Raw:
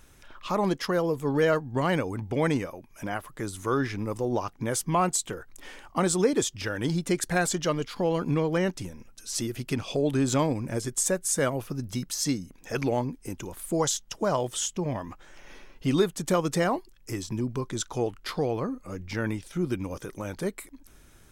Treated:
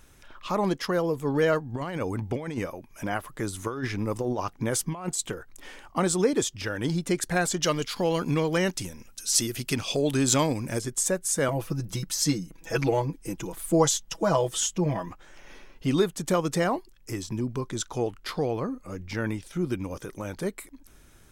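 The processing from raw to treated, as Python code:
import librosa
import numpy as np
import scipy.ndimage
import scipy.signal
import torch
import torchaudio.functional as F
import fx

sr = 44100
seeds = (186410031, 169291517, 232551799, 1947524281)

y = fx.over_compress(x, sr, threshold_db=-28.0, ratio=-0.5, at=(1.69, 5.32))
y = fx.high_shelf(y, sr, hz=2300.0, db=10.0, at=(7.62, 10.79))
y = fx.comb(y, sr, ms=6.1, depth=0.9, at=(11.48, 15.1))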